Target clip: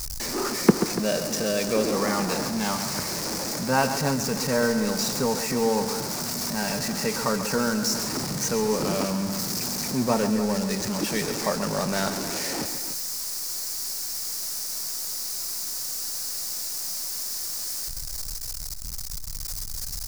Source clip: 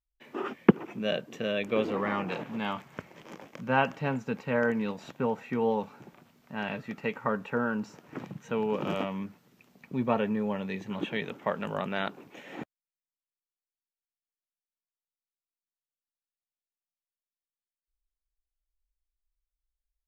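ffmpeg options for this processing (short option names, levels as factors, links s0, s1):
-af "aeval=exprs='val(0)+0.5*0.0299*sgn(val(0))':c=same,highshelf=f=4000:t=q:w=3:g=8,aecho=1:1:134.1|288.6:0.316|0.251,volume=1.26"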